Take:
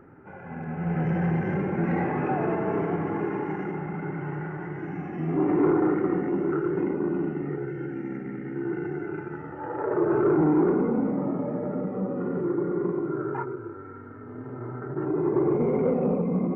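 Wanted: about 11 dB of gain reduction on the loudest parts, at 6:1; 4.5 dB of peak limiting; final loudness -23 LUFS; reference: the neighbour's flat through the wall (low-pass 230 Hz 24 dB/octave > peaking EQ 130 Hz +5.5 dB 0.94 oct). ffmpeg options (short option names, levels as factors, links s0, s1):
-af "acompressor=threshold=0.0316:ratio=6,alimiter=level_in=1.41:limit=0.0631:level=0:latency=1,volume=0.708,lowpass=f=230:w=0.5412,lowpass=f=230:w=1.3066,equalizer=f=130:t=o:w=0.94:g=5.5,volume=5.62"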